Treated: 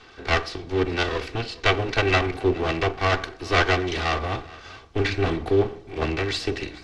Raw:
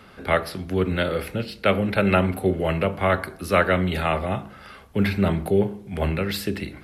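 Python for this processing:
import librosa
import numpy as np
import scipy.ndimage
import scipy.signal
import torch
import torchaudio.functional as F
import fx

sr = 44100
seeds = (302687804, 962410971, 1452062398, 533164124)

p1 = fx.lower_of_two(x, sr, delay_ms=2.6)
p2 = scipy.signal.sosfilt(scipy.signal.butter(4, 6000.0, 'lowpass', fs=sr, output='sos'), p1)
p3 = fx.high_shelf(p2, sr, hz=3400.0, db=8.0)
y = p3 + fx.echo_single(p3, sr, ms=423, db=-21.0, dry=0)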